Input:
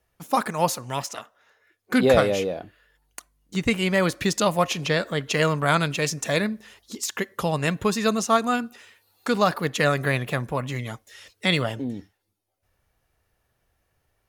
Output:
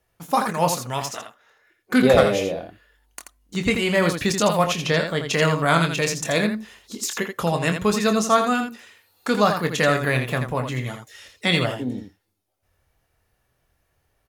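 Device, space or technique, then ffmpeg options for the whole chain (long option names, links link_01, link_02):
slapback doubling: -filter_complex "[0:a]asplit=3[link_01][link_02][link_03];[link_02]adelay=24,volume=-8dB[link_04];[link_03]adelay=83,volume=-7dB[link_05];[link_01][link_04][link_05]amix=inputs=3:normalize=0,volume=1dB"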